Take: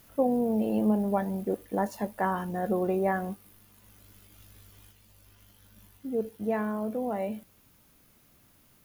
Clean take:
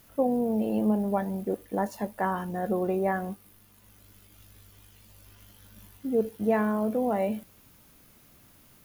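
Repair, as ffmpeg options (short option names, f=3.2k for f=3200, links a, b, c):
-af "adeclick=t=4,asetnsamples=n=441:p=0,asendcmd='4.92 volume volume 4.5dB',volume=0dB"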